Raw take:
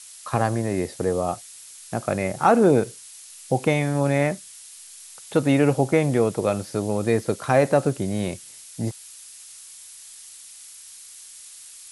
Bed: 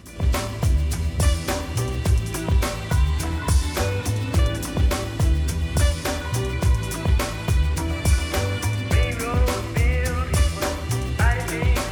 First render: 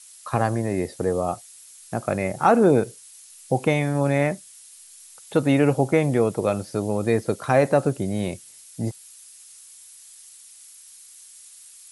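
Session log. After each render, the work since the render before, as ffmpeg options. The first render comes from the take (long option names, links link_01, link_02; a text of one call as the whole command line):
ffmpeg -i in.wav -af "afftdn=noise_reduction=6:noise_floor=-44" out.wav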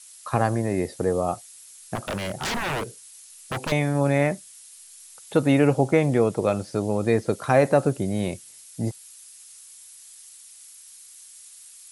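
ffmpeg -i in.wav -filter_complex "[0:a]asettb=1/sr,asplit=3[link_01][link_02][link_03];[link_01]atrim=end=1.954[link_04];[link_02]atrim=start=1.95:end=3.72,asetpts=PTS-STARTPTS,afade=type=in:duration=0.004:curve=qsin,afade=type=out:start_time=1.766:duration=0.004:curve=qsin,aeval=exprs='0.0794*(abs(mod(val(0)/0.0794+3,4)-2)-1)':channel_layout=same[link_05];[link_03]atrim=start=3.716[link_06];[link_04][link_05]acrossfade=duration=0.004:curve1=hsin:curve2=qsin[link_07];[link_07][link_06]acrossfade=duration=0.004:curve1=qsin:curve2=hsin,asettb=1/sr,asplit=3[link_08][link_09][link_10];[link_08]atrim=end=5.674[link_11];[link_09]atrim=start=5.67:end=7.33,asetpts=PTS-STARTPTS,afade=type=in:duration=0.004:curve=qsin,afade=type=out:start_time=1.656:duration=0.004:curve=qsin,lowpass=9900[link_12];[link_10]atrim=start=7.326[link_13];[link_11][link_12]acrossfade=duration=0.004:curve1=hsin:curve2=qsin[link_14];[link_14][link_13]acrossfade=duration=0.004:curve1=qsin:curve2=hsin" out.wav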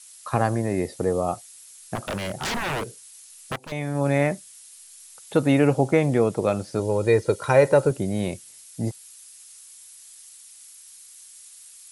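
ffmpeg -i in.wav -filter_complex "[0:a]asettb=1/sr,asplit=3[link_01][link_02][link_03];[link_01]atrim=end=0.824[link_04];[link_02]atrim=start=0.82:end=1.34,asetpts=PTS-STARTPTS,afade=type=in:duration=0.004:curve=qsin,afade=type=out:start_time=0.516:duration=0.004:curve=qsin,bandreject=frequency=1600:width=12[link_05];[link_03]atrim=start=1.336[link_06];[link_04][link_05]acrossfade=duration=0.004:curve1=hsin:curve2=qsin[link_07];[link_07][link_06]acrossfade=duration=0.004:curve1=qsin:curve2=hsin,asettb=1/sr,asplit=3[link_08][link_09][link_10];[link_08]atrim=end=6.794[link_11];[link_09]atrim=start=6.79:end=7.91,asetpts=PTS-STARTPTS,afade=type=in:duration=0.004:curve=qsin,afade=type=out:start_time=1.116:duration=0.004:curve=qsin,aecho=1:1:2.1:0.58,atrim=end_sample=49392[link_12];[link_10]atrim=start=7.906[link_13];[link_11][link_12]acrossfade=duration=0.004:curve1=hsin:curve2=qsin[link_14];[link_14][link_13]acrossfade=duration=0.004:curve1=qsin:curve2=hsin,asplit=2[link_15][link_16];[link_15]atrim=end=3.56,asetpts=PTS-STARTPTS,afade=type=out:start_time=3.556:duration=0.004:curve=hsin:silence=0.105925[link_17];[link_16]atrim=start=3.56,asetpts=PTS-STARTPTS,afade=type=in:duration=0.57:silence=0.105925[link_18];[link_17][link_18]concat=n=2:v=0:a=1" out.wav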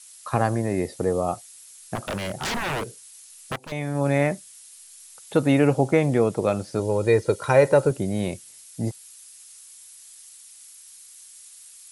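ffmpeg -i in.wav -af anull out.wav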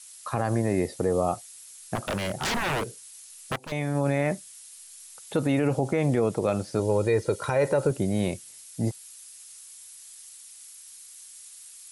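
ffmpeg -i in.wav -af "alimiter=limit=-14dB:level=0:latency=1:release=50" out.wav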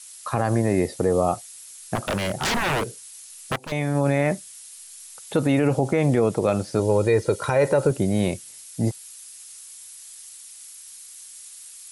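ffmpeg -i in.wav -af "volume=4dB" out.wav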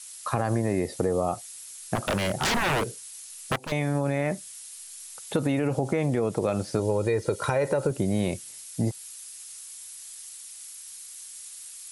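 ffmpeg -i in.wav -af "acompressor=threshold=-21dB:ratio=6" out.wav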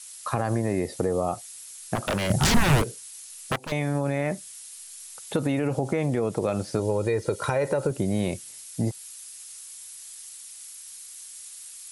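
ffmpeg -i in.wav -filter_complex "[0:a]asettb=1/sr,asplit=3[link_01][link_02][link_03];[link_01]atrim=end=2.304[link_04];[link_02]atrim=start=2.3:end=2.82,asetpts=PTS-STARTPTS,afade=type=in:duration=0.004:curve=qsin,afade=type=out:start_time=0.516:duration=0.004:curve=qsin,bass=frequency=250:gain=13,treble=frequency=4000:gain=6[link_05];[link_03]atrim=start=2.816[link_06];[link_04][link_05]acrossfade=duration=0.004:curve1=hsin:curve2=qsin[link_07];[link_07][link_06]acrossfade=duration=0.004:curve1=qsin:curve2=hsin" out.wav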